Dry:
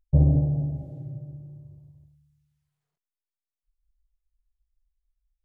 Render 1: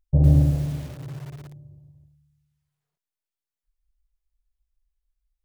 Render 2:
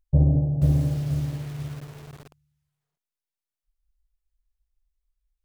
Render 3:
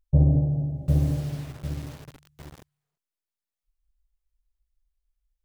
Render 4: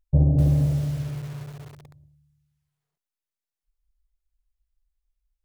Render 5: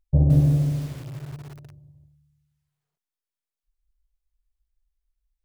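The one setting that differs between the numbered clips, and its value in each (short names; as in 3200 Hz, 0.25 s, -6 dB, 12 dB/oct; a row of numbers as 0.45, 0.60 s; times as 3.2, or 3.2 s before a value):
lo-fi delay, time: 0.108, 0.486, 0.751, 0.254, 0.17 s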